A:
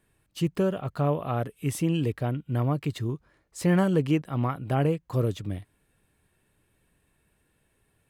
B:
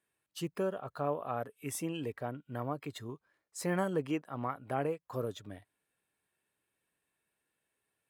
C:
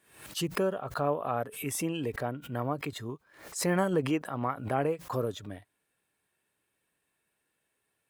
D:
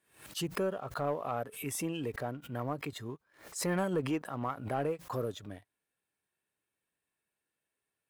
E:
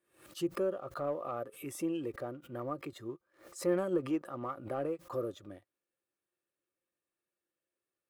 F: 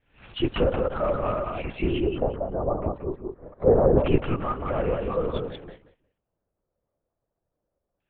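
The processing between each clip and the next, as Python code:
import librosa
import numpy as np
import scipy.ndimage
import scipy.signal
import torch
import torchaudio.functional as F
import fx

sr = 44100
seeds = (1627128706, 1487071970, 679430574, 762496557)

y1 = fx.highpass(x, sr, hz=570.0, slope=6)
y1 = fx.noise_reduce_blind(y1, sr, reduce_db=8)
y1 = fx.dynamic_eq(y1, sr, hz=2500.0, q=0.8, threshold_db=-46.0, ratio=4.0, max_db=-4)
y1 = F.gain(torch.from_numpy(y1), -2.5).numpy()
y2 = fx.pre_swell(y1, sr, db_per_s=100.0)
y2 = F.gain(torch.from_numpy(y2), 4.5).numpy()
y3 = fx.leveller(y2, sr, passes=1)
y3 = F.gain(torch.from_numpy(y3), -7.0).numpy()
y4 = fx.small_body(y3, sr, hz=(350.0, 530.0, 1200.0), ring_ms=55, db=14)
y4 = F.gain(torch.from_numpy(y4), -8.0).numpy()
y5 = fx.filter_lfo_lowpass(y4, sr, shape='square', hz=0.25, low_hz=770.0, high_hz=2900.0, q=2.2)
y5 = fx.echo_feedback(y5, sr, ms=179, feedback_pct=18, wet_db=-3.5)
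y5 = fx.lpc_vocoder(y5, sr, seeds[0], excitation='whisper', order=8)
y5 = F.gain(torch.from_numpy(y5), 9.0).numpy()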